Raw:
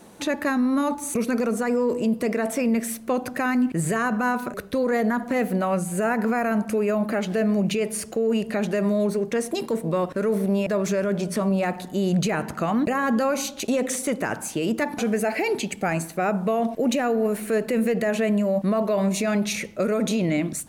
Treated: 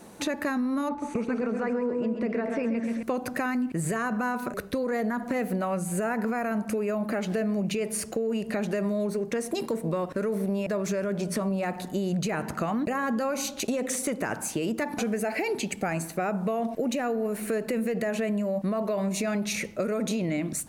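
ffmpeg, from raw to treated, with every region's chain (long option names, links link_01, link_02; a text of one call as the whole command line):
ffmpeg -i in.wav -filter_complex "[0:a]asettb=1/sr,asplit=3[link_01][link_02][link_03];[link_01]atrim=end=0.894[link_04];[link_02]atrim=start=0.89:end=3.03,asetpts=PTS-STARTPTS,afade=type=in:duration=0.004:curve=qsin,afade=type=out:start_time=2.136:duration=0.004:curve=qsin,lowpass=2800,aecho=1:1:131|262|393|524|655|786:0.447|0.237|0.125|0.0665|0.0352|0.0187,atrim=end_sample=94374[link_05];[link_03]atrim=start=3.026[link_06];[link_04][link_05]acrossfade=duration=0.004:curve1=hsin:curve2=qsin[link_07];[link_07][link_06]acrossfade=duration=0.004:curve1=qsin:curve2=hsin,equalizer=frequency=3300:width=4.5:gain=-3,acompressor=threshold=-25dB:ratio=6" out.wav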